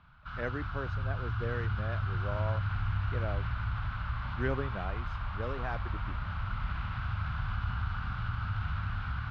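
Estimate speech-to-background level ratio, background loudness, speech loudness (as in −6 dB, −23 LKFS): −5.0 dB, −35.5 LKFS, −40.5 LKFS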